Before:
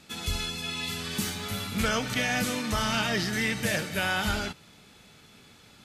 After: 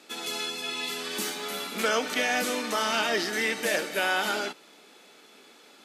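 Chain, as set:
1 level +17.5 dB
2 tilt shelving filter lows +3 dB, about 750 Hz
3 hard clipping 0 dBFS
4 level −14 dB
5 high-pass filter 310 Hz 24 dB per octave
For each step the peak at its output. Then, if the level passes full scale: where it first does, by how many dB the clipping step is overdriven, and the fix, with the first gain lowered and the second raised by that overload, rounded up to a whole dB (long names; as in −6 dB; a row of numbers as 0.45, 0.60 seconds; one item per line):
+1.5, +3.0, 0.0, −14.0, −13.0 dBFS
step 1, 3.0 dB
step 1 +14.5 dB, step 4 −11 dB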